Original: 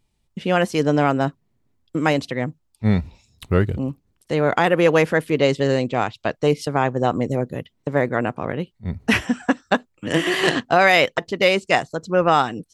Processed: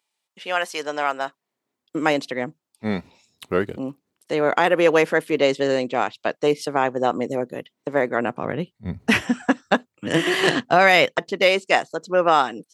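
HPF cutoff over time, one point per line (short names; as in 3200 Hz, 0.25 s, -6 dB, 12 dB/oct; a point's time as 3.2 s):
1.27 s 770 Hz
1.96 s 270 Hz
8.11 s 270 Hz
8.55 s 110 Hz
10.94 s 110 Hz
11.55 s 290 Hz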